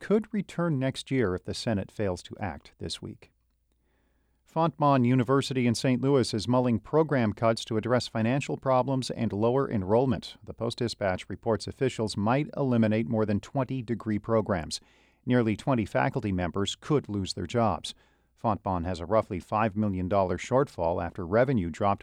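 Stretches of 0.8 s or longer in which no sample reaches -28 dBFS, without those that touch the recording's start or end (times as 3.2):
3.05–4.56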